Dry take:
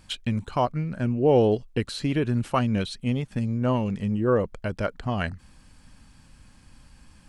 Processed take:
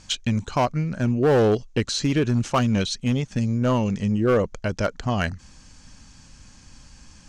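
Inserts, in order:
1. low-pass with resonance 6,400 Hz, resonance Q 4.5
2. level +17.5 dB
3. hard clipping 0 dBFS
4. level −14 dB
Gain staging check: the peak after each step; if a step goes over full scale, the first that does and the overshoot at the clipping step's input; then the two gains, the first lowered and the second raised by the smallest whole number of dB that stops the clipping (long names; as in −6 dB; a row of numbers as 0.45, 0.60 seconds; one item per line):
−9.5, +8.0, 0.0, −14.0 dBFS
step 2, 8.0 dB
step 2 +9.5 dB, step 4 −6 dB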